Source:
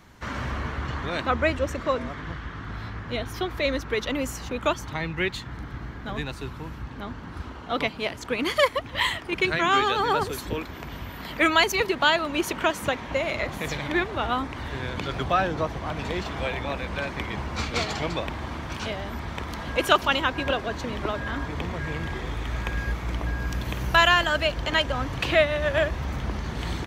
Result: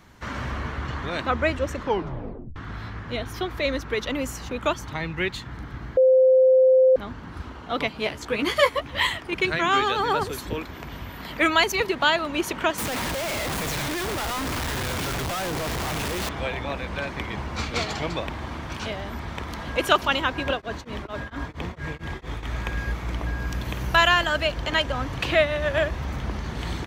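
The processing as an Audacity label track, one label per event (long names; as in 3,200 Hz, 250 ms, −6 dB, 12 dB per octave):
1.770000	1.770000	tape stop 0.79 s
5.970000	6.960000	beep over 519 Hz −12.5 dBFS
7.930000	9.070000	double-tracking delay 14 ms −5 dB
12.780000	16.290000	sign of each sample alone
20.510000	22.430000	tremolo along a rectified sine nulls at 4.4 Hz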